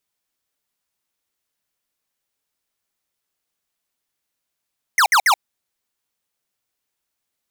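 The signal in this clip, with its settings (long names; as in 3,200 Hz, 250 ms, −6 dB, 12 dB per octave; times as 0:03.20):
repeated falling chirps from 2,200 Hz, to 720 Hz, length 0.08 s square, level −13.5 dB, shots 3, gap 0.06 s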